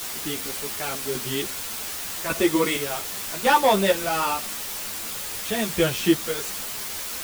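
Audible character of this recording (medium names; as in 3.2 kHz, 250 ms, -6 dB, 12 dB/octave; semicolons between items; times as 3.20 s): chopped level 0.87 Hz, depth 60%, duty 40%; a quantiser's noise floor 6-bit, dither triangular; a shimmering, thickened sound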